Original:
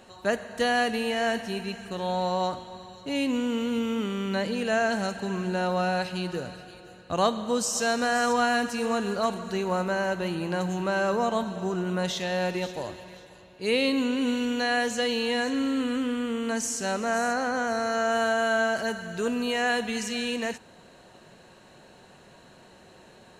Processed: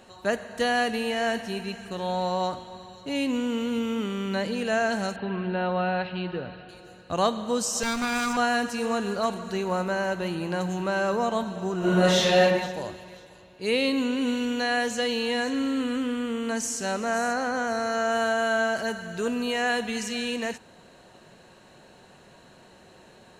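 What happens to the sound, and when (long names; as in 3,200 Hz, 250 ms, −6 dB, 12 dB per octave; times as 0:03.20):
0:05.16–0:06.69: Butterworth low-pass 3,700 Hz
0:07.83–0:08.37: lower of the sound and its delayed copy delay 0.82 ms
0:11.78–0:12.41: thrown reverb, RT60 1.1 s, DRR −9 dB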